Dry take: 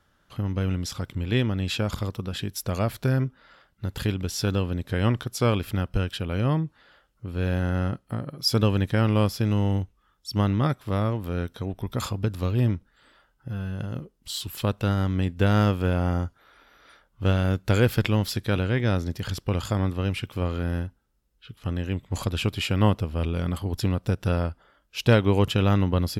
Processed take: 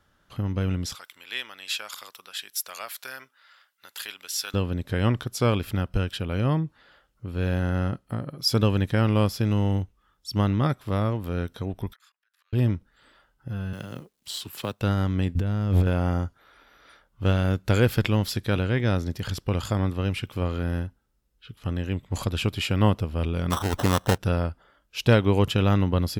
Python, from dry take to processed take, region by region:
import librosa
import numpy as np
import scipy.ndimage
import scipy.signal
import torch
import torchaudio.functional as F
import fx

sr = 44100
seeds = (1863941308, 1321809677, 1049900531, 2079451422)

y = fx.chain(x, sr, fx.highpass(hz=1300.0, slope=12),
    fx.high_shelf(hz=8300.0, db=8.0), at=(0.95, 4.54))
y = fx.chain(y, sr, fx.peak_eq(hz=2400.0, db=-2.5, octaves=0.4),
    fx.auto_swell(attack_ms=541.0),
    fx.ladder_highpass(hz=1500.0, resonance_pct=60), at=(11.93, 12.53))
y = fx.chain(y, sr, fx.law_mismatch(coded='A'),
    fx.highpass(hz=220.0, slope=6),
    fx.band_squash(depth_pct=40), at=(13.73, 14.81))
y = fx.chain(y, sr, fx.low_shelf(hz=270.0, db=11.5),
    fx.over_compress(threshold_db=-22.0, ratio=-1.0),
    fx.clip_hard(threshold_db=-15.0), at=(15.35, 15.87))
y = fx.chain(y, sr, fx.peak_eq(hz=1100.0, db=14.5, octaves=2.1),
    fx.sample_hold(seeds[0], rate_hz=2300.0, jitter_pct=0), at=(23.5, 24.18))